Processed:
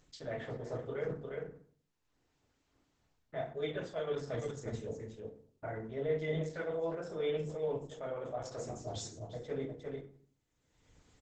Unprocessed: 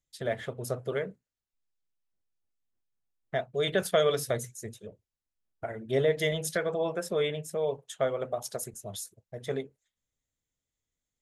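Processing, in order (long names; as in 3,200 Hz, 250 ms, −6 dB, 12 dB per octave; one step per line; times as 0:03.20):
noise gate with hold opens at −51 dBFS
low-pass filter 2,200 Hz 6 dB per octave
on a send: single-tap delay 355 ms −15.5 dB
on the sum: upward compression, threshold −38 dBFS
mains-hum notches 50/100/150/200/250/300 Hz
reversed playback
downward compressor 4 to 1, threshold −44 dBFS, peak gain reduction 20 dB
reversed playback
feedback delay network reverb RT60 0.49 s, low-frequency decay 1.25×, high-frequency decay 0.7×, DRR −2.5 dB
level +2 dB
Opus 10 kbit/s 48,000 Hz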